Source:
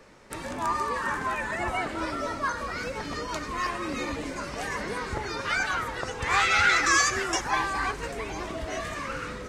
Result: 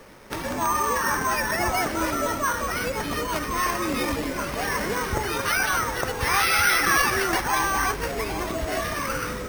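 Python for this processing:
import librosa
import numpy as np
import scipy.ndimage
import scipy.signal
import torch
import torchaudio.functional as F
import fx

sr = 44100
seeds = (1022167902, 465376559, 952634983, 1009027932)

p1 = np.repeat(x[::6], 6)[:len(x)]
p2 = fx.over_compress(p1, sr, threshold_db=-29.0, ratio=-1.0)
y = p1 + F.gain(torch.from_numpy(p2), -2.0).numpy()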